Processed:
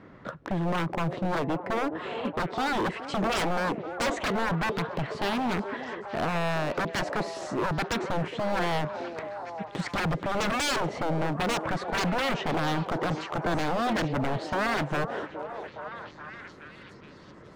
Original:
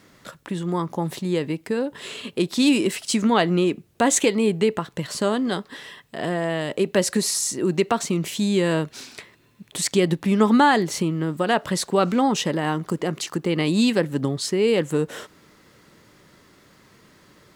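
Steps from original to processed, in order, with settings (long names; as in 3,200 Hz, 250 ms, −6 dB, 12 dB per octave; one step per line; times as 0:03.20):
low-pass filter 1,500 Hz 12 dB per octave
in parallel at −2.5 dB: downward compressor, threshold −30 dBFS, peak gain reduction 16.5 dB
on the sum: wave folding −22.5 dBFS
echo through a band-pass that steps 418 ms, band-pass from 430 Hz, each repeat 0.7 octaves, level −4 dB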